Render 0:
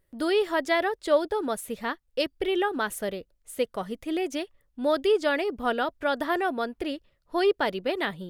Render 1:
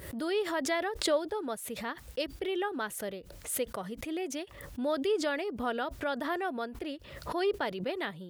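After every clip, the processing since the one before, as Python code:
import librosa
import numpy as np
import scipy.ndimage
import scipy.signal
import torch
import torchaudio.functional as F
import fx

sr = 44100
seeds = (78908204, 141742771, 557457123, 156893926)

y = scipy.signal.sosfilt(scipy.signal.butter(4, 55.0, 'highpass', fs=sr, output='sos'), x)
y = fx.pre_swell(y, sr, db_per_s=65.0)
y = F.gain(torch.from_numpy(y), -7.0).numpy()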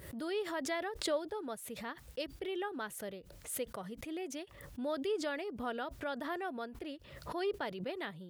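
y = fx.peak_eq(x, sr, hz=140.0, db=3.5, octaves=0.77)
y = F.gain(torch.from_numpy(y), -6.0).numpy()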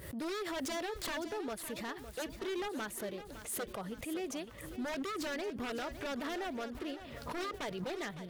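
y = 10.0 ** (-35.5 / 20.0) * (np.abs((x / 10.0 ** (-35.5 / 20.0) + 3.0) % 4.0 - 2.0) - 1.0)
y = fx.echo_feedback(y, sr, ms=559, feedback_pct=52, wet_db=-12)
y = F.gain(torch.from_numpy(y), 2.5).numpy()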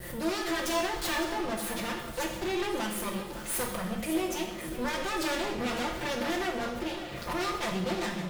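y = fx.lower_of_two(x, sr, delay_ms=5.7)
y = fx.rev_plate(y, sr, seeds[0], rt60_s=0.9, hf_ratio=0.9, predelay_ms=0, drr_db=1.0)
y = F.gain(torch.from_numpy(y), 7.0).numpy()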